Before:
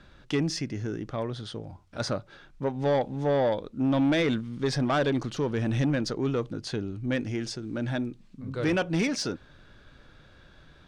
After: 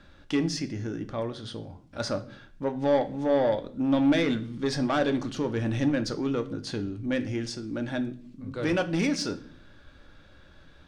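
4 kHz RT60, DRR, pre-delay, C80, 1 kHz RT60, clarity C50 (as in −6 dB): 0.45 s, 8.0 dB, 3 ms, 20.0 dB, 0.40 s, 16.0 dB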